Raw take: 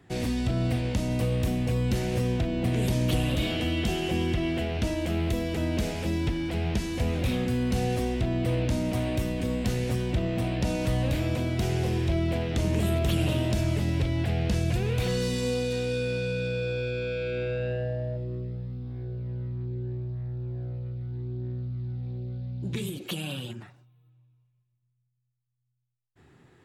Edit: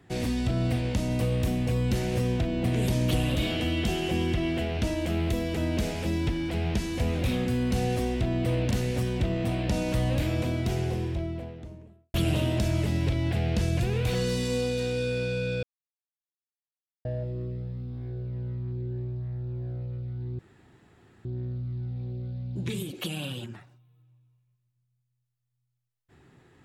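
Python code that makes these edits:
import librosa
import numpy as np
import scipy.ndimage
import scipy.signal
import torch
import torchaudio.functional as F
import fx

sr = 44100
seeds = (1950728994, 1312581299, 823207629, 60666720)

y = fx.studio_fade_out(x, sr, start_s=11.3, length_s=1.77)
y = fx.edit(y, sr, fx.cut(start_s=8.71, length_s=0.93),
    fx.silence(start_s=16.56, length_s=1.42),
    fx.insert_room_tone(at_s=21.32, length_s=0.86), tone=tone)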